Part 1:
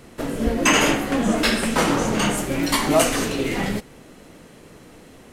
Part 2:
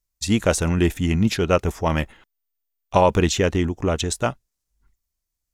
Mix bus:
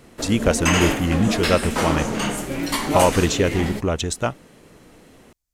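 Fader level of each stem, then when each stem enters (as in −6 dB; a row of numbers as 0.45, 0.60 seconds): −3.0, −0.5 decibels; 0.00, 0.00 seconds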